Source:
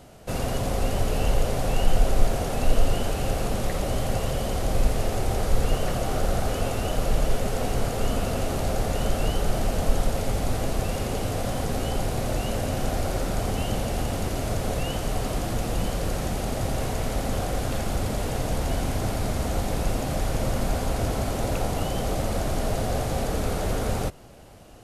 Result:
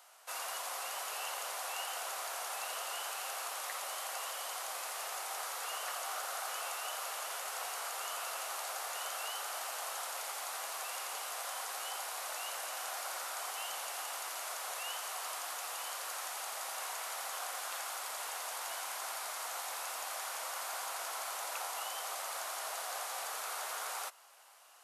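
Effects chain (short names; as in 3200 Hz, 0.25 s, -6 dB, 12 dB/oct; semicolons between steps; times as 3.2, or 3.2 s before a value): ladder high-pass 860 Hz, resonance 40%; high shelf 5600 Hz +8 dB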